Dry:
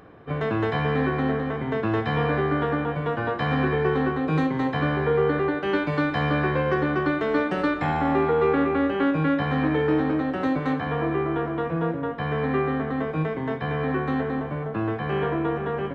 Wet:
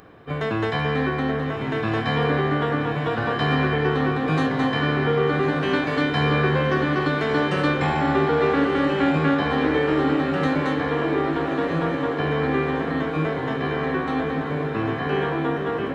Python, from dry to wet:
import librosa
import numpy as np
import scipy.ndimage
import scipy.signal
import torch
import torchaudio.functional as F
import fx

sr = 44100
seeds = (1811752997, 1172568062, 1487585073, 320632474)

y = fx.high_shelf(x, sr, hz=3400.0, db=11.5)
y = fx.echo_diffused(y, sr, ms=1206, feedback_pct=65, wet_db=-6.0)